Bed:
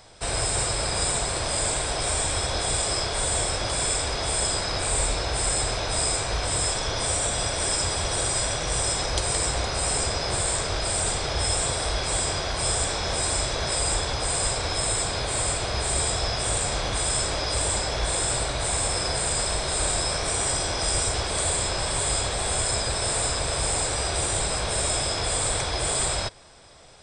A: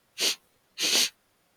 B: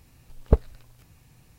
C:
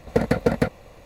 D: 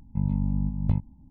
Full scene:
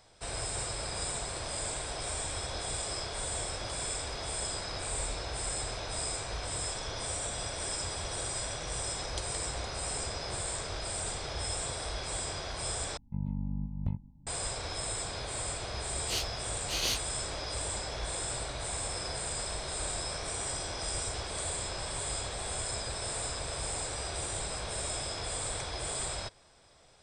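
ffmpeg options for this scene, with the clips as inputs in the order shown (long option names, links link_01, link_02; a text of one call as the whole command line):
ffmpeg -i bed.wav -i cue0.wav -i cue1.wav -i cue2.wav -i cue3.wav -filter_complex "[0:a]volume=-10.5dB[link_01];[2:a]acompressor=threshold=-51dB:ratio=6:attack=3.2:release=140:knee=1:detection=peak[link_02];[4:a]asplit=2[link_03][link_04];[link_04]adelay=443.1,volume=-20dB,highshelf=frequency=4000:gain=-9.97[link_05];[link_03][link_05]amix=inputs=2:normalize=0[link_06];[link_01]asplit=2[link_07][link_08];[link_07]atrim=end=12.974[link_09];[link_06]atrim=end=1.3,asetpts=PTS-STARTPTS,volume=-9dB[link_10];[link_08]atrim=start=14.266[link_11];[link_02]atrim=end=1.58,asetpts=PTS-STARTPTS,volume=-12.5dB,afade=type=in:duration=0.004:curve=hsin,afade=type=out:start_time=1.576:duration=0.004:curve=hsin,adelay=2670[link_12];[1:a]atrim=end=1.56,asetpts=PTS-STARTPTS,volume=-8.5dB,afade=type=in:duration=0.004:curve=hsin,afade=type=out:start_time=1.556:duration=0.004:curve=hsin,adelay=15900[link_13];[link_09][link_10]acrossfade=duration=0.004:curve1=hsin:curve2=hsin[link_14];[link_14][link_11]acrossfade=duration=0.004:curve1=hsin:curve2=hsin[link_15];[link_15][link_12][link_13]amix=inputs=3:normalize=0" out.wav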